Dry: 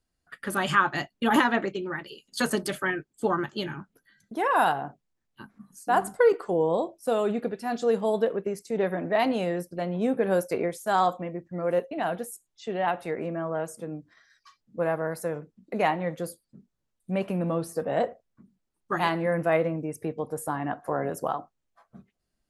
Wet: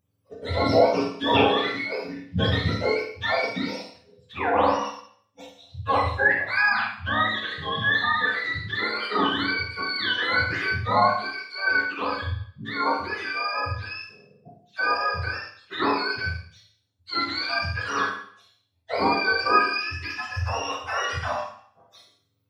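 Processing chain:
frequency axis turned over on the octave scale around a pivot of 890 Hz
four-comb reverb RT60 0.57 s, combs from 25 ms, DRR 0 dB
level +2.5 dB

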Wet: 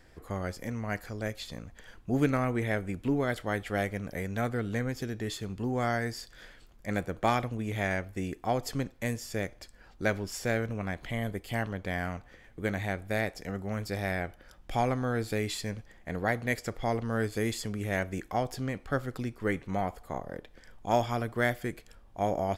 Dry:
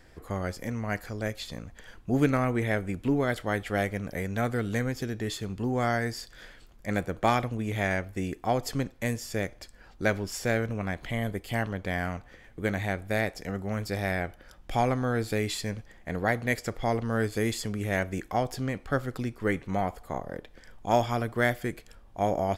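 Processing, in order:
0:04.49–0:04.89: high-shelf EQ 4,200 Hz −6 dB
level −2.5 dB

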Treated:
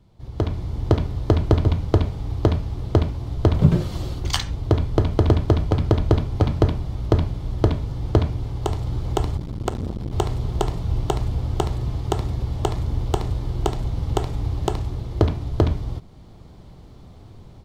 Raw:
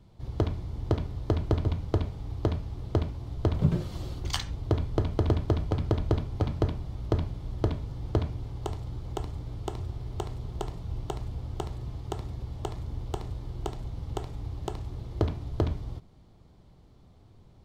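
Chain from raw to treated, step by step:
automatic gain control gain up to 12 dB
0:09.37–0:10.13: saturating transformer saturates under 580 Hz

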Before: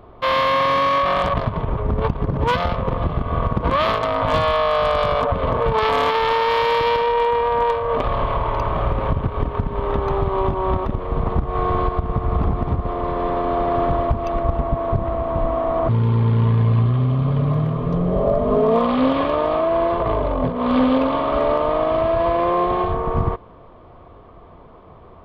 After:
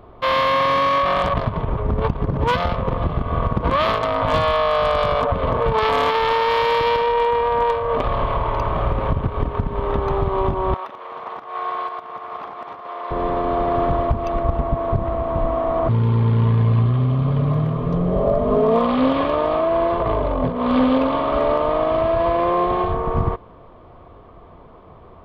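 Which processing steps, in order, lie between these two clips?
0:10.74–0:13.11: high-pass filter 850 Hz 12 dB per octave

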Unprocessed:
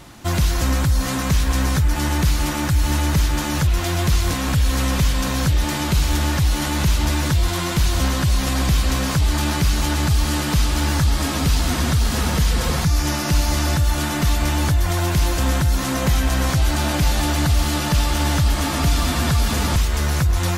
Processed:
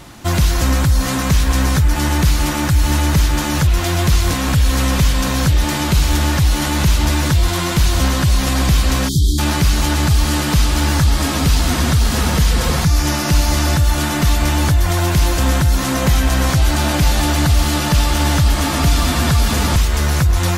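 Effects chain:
time-frequency box erased 0:09.09–0:09.39, 430–3,100 Hz
level +4 dB

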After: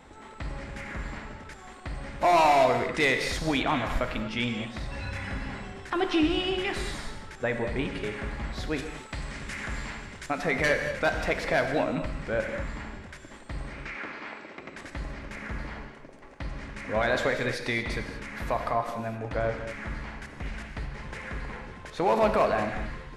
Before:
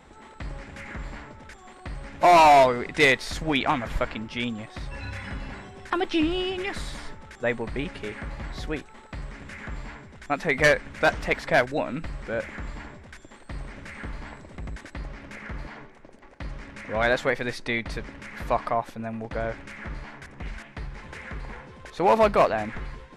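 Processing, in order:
0:08.78–0:10.28: high-shelf EQ 2,400 Hz +9.5 dB
brickwall limiter −17 dBFS, peak gain reduction 6.5 dB
0:13.73–0:14.77: loudspeaker in its box 330–6,100 Hz, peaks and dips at 340 Hz +6 dB, 1,300 Hz +4 dB, 2,400 Hz +7 dB
reverb whose tail is shaped and stops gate 260 ms flat, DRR 5 dB

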